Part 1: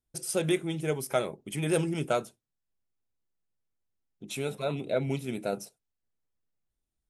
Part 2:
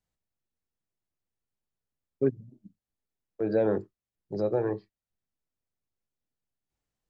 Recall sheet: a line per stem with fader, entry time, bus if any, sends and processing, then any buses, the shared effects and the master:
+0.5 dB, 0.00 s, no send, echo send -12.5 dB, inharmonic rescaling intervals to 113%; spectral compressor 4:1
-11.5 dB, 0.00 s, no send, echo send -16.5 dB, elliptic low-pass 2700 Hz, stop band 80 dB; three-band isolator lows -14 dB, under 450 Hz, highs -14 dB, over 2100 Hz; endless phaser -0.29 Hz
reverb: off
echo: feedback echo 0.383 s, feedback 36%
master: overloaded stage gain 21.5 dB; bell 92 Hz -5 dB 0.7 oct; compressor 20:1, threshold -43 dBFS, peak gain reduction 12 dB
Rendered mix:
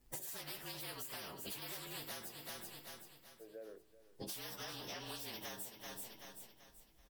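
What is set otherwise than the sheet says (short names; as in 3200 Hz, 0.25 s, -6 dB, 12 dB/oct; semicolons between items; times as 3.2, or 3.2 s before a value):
stem 1 +0.5 dB -> +7.5 dB; stem 2 -11.5 dB -> -20.0 dB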